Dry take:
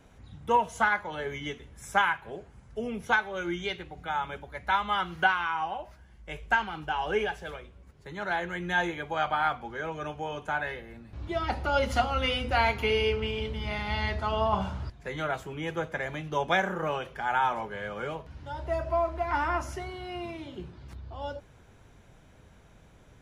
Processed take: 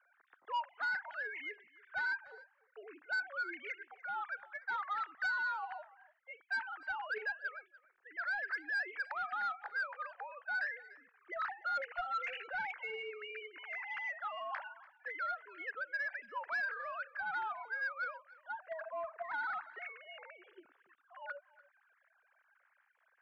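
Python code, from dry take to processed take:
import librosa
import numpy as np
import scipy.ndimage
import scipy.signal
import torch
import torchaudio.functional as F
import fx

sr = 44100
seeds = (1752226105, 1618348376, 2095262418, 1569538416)

p1 = fx.sine_speech(x, sr)
p2 = fx.over_compress(p1, sr, threshold_db=-34.0, ratio=-1.0)
p3 = p1 + F.gain(torch.from_numpy(p2), -2.0).numpy()
p4 = fx.bandpass_q(p3, sr, hz=1600.0, q=3.6)
p5 = 10.0 ** (-30.5 / 20.0) * np.tanh(p4 / 10.0 ** (-30.5 / 20.0))
p6 = fx.air_absorb(p5, sr, metres=180.0)
y = p6 + fx.echo_single(p6, sr, ms=292, db=-21.0, dry=0)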